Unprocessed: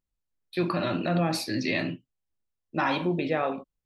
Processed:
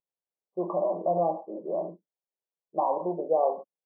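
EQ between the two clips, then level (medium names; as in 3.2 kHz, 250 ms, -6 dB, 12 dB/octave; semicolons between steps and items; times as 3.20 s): dynamic bell 660 Hz, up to +6 dB, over -38 dBFS, Q 1; brick-wall FIR band-pass 170–1200 Hz; static phaser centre 610 Hz, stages 4; 0.0 dB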